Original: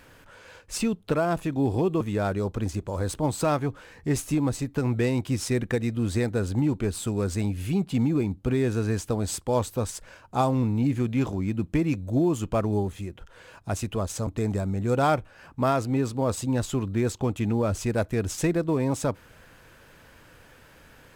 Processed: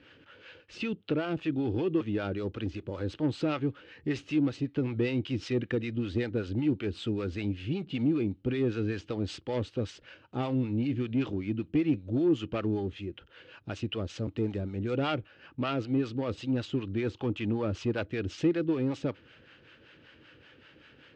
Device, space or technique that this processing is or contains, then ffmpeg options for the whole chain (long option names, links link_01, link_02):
guitar amplifier with harmonic tremolo: -filter_complex "[0:a]acrossover=split=600[link_01][link_02];[link_01]aeval=exprs='val(0)*(1-0.7/2+0.7/2*cos(2*PI*5.2*n/s))':channel_layout=same[link_03];[link_02]aeval=exprs='val(0)*(1-0.7/2-0.7/2*cos(2*PI*5.2*n/s))':channel_layout=same[link_04];[link_03][link_04]amix=inputs=2:normalize=0,asoftclip=type=tanh:threshold=-20.5dB,highpass=100,equalizer=frequency=180:width_type=q:width=4:gain=-4,equalizer=frequency=320:width_type=q:width=4:gain=6,equalizer=frequency=700:width_type=q:width=4:gain=-8,equalizer=frequency=1000:width_type=q:width=4:gain=-9,equalizer=frequency=2900:width_type=q:width=4:gain=8,lowpass=frequency=4400:width=0.5412,lowpass=frequency=4400:width=1.3066,asettb=1/sr,asplit=3[link_05][link_06][link_07];[link_05]atrim=end=17.024[link_08];[link_06]atrim=start=17.02:end=18.04,asetpts=PTS-STARTPTS,afade=type=in:duration=0.004:curve=qsin,afade=type=out:start_time=1.016:duration=0.004:curve=qsin,equalizer=frequency=1000:width=2.3:gain=5.5[link_09];[link_07]atrim=start=18.036[link_10];[link_08][link_09]acrossfade=duration=0.004:curve1=hsin:curve2=qsin[link_11];[link_11][link_10]acrossfade=duration=0.004:curve1=qsin:curve2=hsin"